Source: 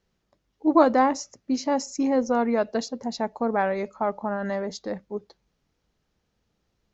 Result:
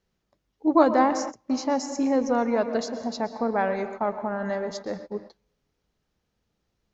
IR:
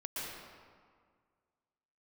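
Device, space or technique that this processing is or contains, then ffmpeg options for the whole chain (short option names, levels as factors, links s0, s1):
keyed gated reverb: -filter_complex "[0:a]asplit=3[s0][s1][s2];[1:a]atrim=start_sample=2205[s3];[s1][s3]afir=irnorm=-1:irlink=0[s4];[s2]apad=whole_len=305766[s5];[s4][s5]sidechaingate=range=0.0224:threshold=0.00891:ratio=16:detection=peak,volume=0.355[s6];[s0][s6]amix=inputs=2:normalize=0,volume=0.75"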